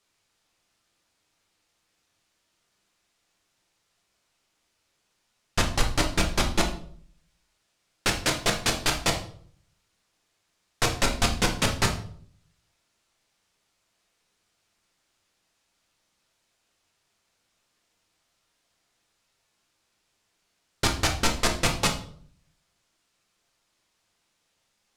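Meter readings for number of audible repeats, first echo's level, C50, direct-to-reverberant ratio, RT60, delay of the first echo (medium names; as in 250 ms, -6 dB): no echo, no echo, 9.0 dB, 2.0 dB, 0.55 s, no echo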